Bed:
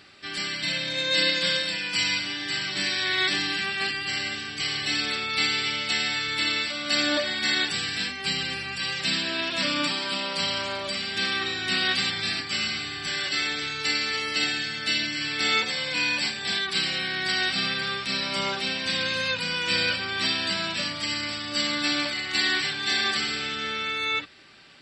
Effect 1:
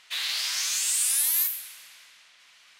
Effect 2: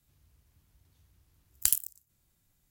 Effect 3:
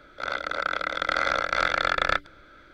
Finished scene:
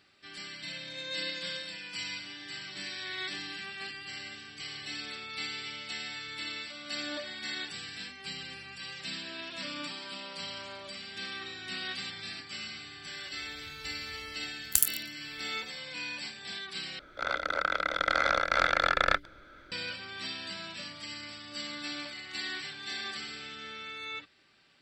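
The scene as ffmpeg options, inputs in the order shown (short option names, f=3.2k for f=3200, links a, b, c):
-filter_complex "[0:a]volume=-13dB[a];[2:a]dynaudnorm=f=120:g=7:m=11.5dB[b];[a]asplit=2[c][d];[c]atrim=end=16.994[e];[3:a]atrim=end=2.73,asetpts=PTS-STARTPTS,volume=-2dB[f];[d]atrim=start=19.716[g];[b]atrim=end=2.7,asetpts=PTS-STARTPTS,volume=-1dB,afade=t=in:d=0.004:c=hsin,afade=t=out:st=2.696:d=0.004:c=hsin,adelay=13100[h];[e][f]acrossfade=d=0.004:c1=hsin:c2=hsin[i];[i][g]acrossfade=d=0.004:c1=hsin:c2=hsin[j];[j][h]amix=inputs=2:normalize=0"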